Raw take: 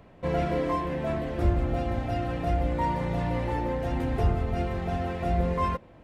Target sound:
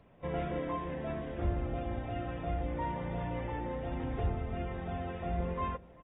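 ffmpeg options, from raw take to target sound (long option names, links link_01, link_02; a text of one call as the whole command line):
ffmpeg -i in.wav -filter_complex "[0:a]asplit=2[link_01][link_02];[link_02]adelay=393,lowpass=frequency=4900:poles=1,volume=-22dB,asplit=2[link_03][link_04];[link_04]adelay=393,lowpass=frequency=4900:poles=1,volume=0.42,asplit=2[link_05][link_06];[link_06]adelay=393,lowpass=frequency=4900:poles=1,volume=0.42[link_07];[link_01][link_03][link_05][link_07]amix=inputs=4:normalize=0,volume=-8.5dB" -ar 32000 -c:a aac -b:a 16k out.aac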